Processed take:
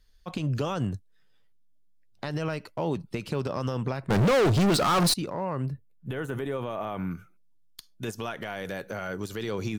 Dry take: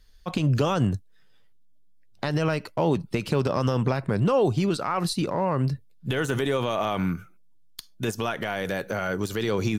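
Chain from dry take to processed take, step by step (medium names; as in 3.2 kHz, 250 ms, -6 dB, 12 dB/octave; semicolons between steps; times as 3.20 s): 4.10–5.14 s: waveshaping leveller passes 5; 5.66–7.11 s: peaking EQ 5.2 kHz -13.5 dB 1.6 oct; trim -6 dB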